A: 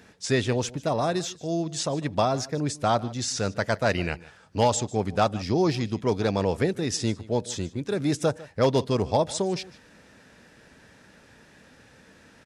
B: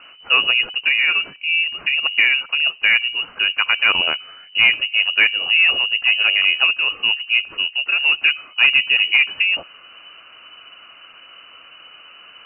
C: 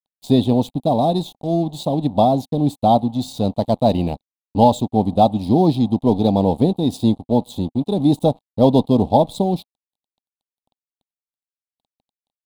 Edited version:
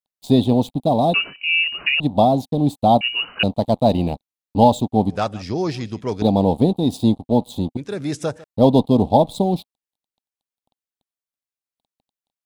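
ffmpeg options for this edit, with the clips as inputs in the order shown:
-filter_complex "[1:a]asplit=2[a][b];[0:a]asplit=2[c][d];[2:a]asplit=5[e][f][g][h][i];[e]atrim=end=1.142[j];[a]atrim=start=1.138:end=2.002[k];[f]atrim=start=1.998:end=3.012[l];[b]atrim=start=3.008:end=3.432[m];[g]atrim=start=3.428:end=5.102[n];[c]atrim=start=5.098:end=6.222[o];[h]atrim=start=6.218:end=7.772[p];[d]atrim=start=7.768:end=8.442[q];[i]atrim=start=8.438[r];[j][k]acrossfade=d=0.004:c1=hsin:c2=hsin[s];[s][l]acrossfade=d=0.004:c1=hsin:c2=hsin[t];[t][m]acrossfade=d=0.004:c1=hsin:c2=hsin[u];[u][n]acrossfade=d=0.004:c1=hsin:c2=hsin[v];[v][o]acrossfade=d=0.004:c1=hsin:c2=hsin[w];[w][p]acrossfade=d=0.004:c1=hsin:c2=hsin[x];[x][q]acrossfade=d=0.004:c1=hsin:c2=hsin[y];[y][r]acrossfade=d=0.004:c1=hsin:c2=hsin"

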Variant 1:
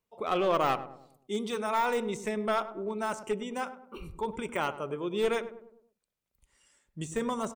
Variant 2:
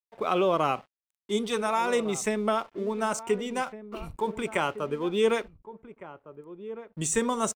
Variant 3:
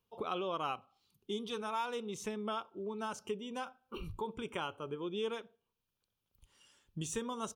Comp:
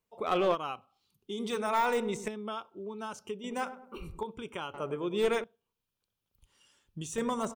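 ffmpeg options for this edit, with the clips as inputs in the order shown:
-filter_complex "[2:a]asplit=4[a][b][c][d];[0:a]asplit=5[e][f][g][h][i];[e]atrim=end=0.56[j];[a]atrim=start=0.52:end=1.41[k];[f]atrim=start=1.37:end=2.282[l];[b]atrim=start=2.278:end=3.442[m];[g]atrim=start=3.438:end=4.232[n];[c]atrim=start=4.228:end=4.742[o];[h]atrim=start=4.738:end=5.442[p];[d]atrim=start=5.438:end=7.182[q];[i]atrim=start=7.178[r];[j][k]acrossfade=d=0.04:c1=tri:c2=tri[s];[s][l]acrossfade=d=0.04:c1=tri:c2=tri[t];[t][m]acrossfade=d=0.004:c1=hsin:c2=hsin[u];[u][n]acrossfade=d=0.004:c1=hsin:c2=hsin[v];[v][o]acrossfade=d=0.004:c1=hsin:c2=hsin[w];[w][p]acrossfade=d=0.004:c1=hsin:c2=hsin[x];[x][q]acrossfade=d=0.004:c1=hsin:c2=hsin[y];[y][r]acrossfade=d=0.004:c1=hsin:c2=hsin"

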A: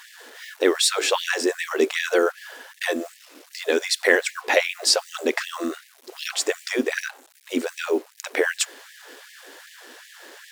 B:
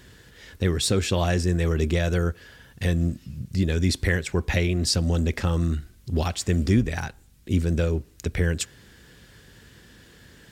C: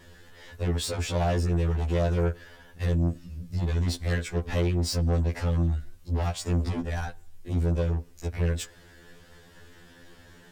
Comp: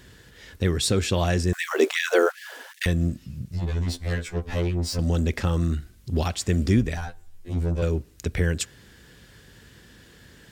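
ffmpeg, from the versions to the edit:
-filter_complex "[2:a]asplit=2[a][b];[1:a]asplit=4[c][d][e][f];[c]atrim=end=1.532[g];[0:a]atrim=start=1.528:end=2.862[h];[d]atrim=start=2.858:end=3.522[i];[a]atrim=start=3.518:end=4.992[j];[e]atrim=start=4.988:end=6.972[k];[b]atrim=start=6.968:end=7.822[l];[f]atrim=start=7.818[m];[g][h]acrossfade=d=0.004:c1=hsin:c2=hsin[n];[n][i]acrossfade=d=0.004:c1=hsin:c2=hsin[o];[o][j]acrossfade=d=0.004:c1=hsin:c2=hsin[p];[p][k]acrossfade=d=0.004:c1=hsin:c2=hsin[q];[q][l]acrossfade=d=0.004:c1=hsin:c2=hsin[r];[r][m]acrossfade=d=0.004:c1=hsin:c2=hsin"

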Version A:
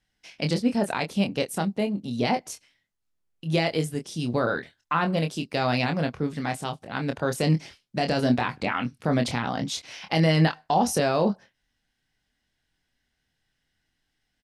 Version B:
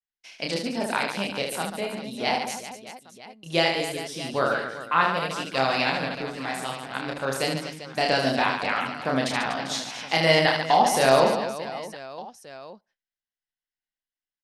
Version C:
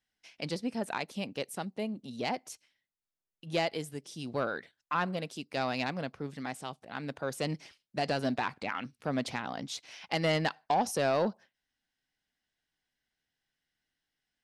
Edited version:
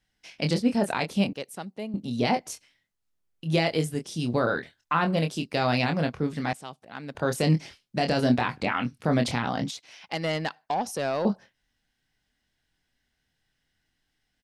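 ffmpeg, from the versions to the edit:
-filter_complex "[2:a]asplit=3[a][b][c];[0:a]asplit=4[d][e][f][g];[d]atrim=end=1.332[h];[a]atrim=start=1.328:end=1.942[i];[e]atrim=start=1.938:end=6.532[j];[b]atrim=start=6.528:end=7.152[k];[f]atrim=start=7.148:end=9.712[l];[c]atrim=start=9.708:end=11.252[m];[g]atrim=start=11.248[n];[h][i]acrossfade=d=0.004:c1=hsin:c2=hsin[o];[o][j]acrossfade=d=0.004:c1=hsin:c2=hsin[p];[p][k]acrossfade=d=0.004:c1=hsin:c2=hsin[q];[q][l]acrossfade=d=0.004:c1=hsin:c2=hsin[r];[r][m]acrossfade=d=0.004:c1=hsin:c2=hsin[s];[s][n]acrossfade=d=0.004:c1=hsin:c2=hsin"

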